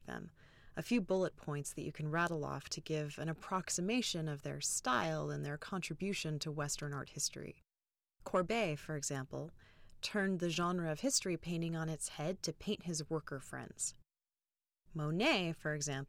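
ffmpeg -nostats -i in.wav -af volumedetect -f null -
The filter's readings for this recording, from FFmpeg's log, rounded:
mean_volume: -39.4 dB
max_volume: -21.9 dB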